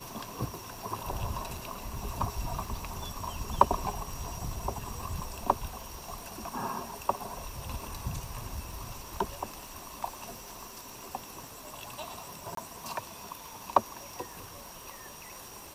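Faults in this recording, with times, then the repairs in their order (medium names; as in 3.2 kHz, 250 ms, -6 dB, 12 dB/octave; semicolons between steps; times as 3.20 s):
crackle 58 per s -40 dBFS
12.55–12.57 s: dropout 23 ms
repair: de-click; interpolate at 12.55 s, 23 ms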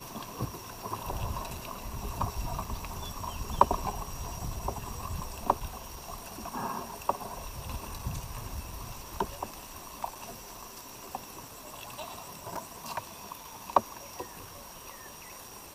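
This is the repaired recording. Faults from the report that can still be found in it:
nothing left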